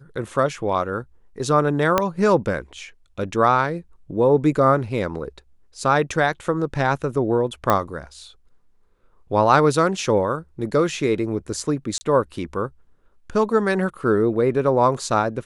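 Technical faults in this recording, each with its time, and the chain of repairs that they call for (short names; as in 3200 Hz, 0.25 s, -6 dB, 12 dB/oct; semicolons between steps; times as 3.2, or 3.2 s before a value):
1.98 pop -3 dBFS
7.7 pop -5 dBFS
11.98–12.01 gap 30 ms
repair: de-click; interpolate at 11.98, 30 ms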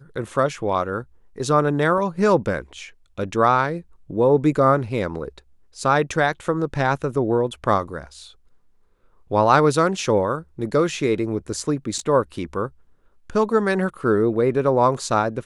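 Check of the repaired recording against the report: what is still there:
1.98 pop
7.7 pop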